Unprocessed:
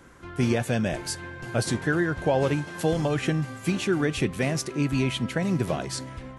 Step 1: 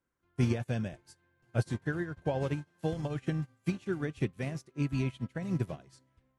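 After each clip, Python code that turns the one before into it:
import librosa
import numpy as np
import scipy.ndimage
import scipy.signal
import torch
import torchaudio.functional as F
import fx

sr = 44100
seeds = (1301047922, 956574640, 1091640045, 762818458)

y = fx.dynamic_eq(x, sr, hz=100.0, q=0.71, threshold_db=-40.0, ratio=4.0, max_db=7)
y = fx.upward_expand(y, sr, threshold_db=-35.0, expansion=2.5)
y = y * librosa.db_to_amplitude(-6.0)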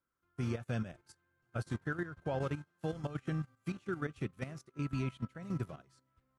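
y = fx.peak_eq(x, sr, hz=1300.0, db=11.5, octaves=0.31)
y = fx.level_steps(y, sr, step_db=11)
y = y * librosa.db_to_amplitude(-1.0)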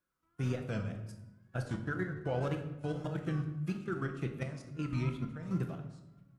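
y = fx.wow_flutter(x, sr, seeds[0], rate_hz=2.1, depth_cents=120.0)
y = fx.room_shoebox(y, sr, seeds[1], volume_m3=370.0, walls='mixed', distance_m=0.71)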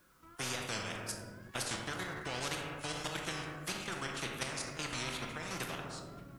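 y = fx.spectral_comp(x, sr, ratio=4.0)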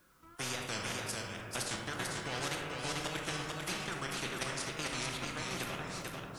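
y = x + 10.0 ** (-3.5 / 20.0) * np.pad(x, (int(444 * sr / 1000.0), 0))[:len(x)]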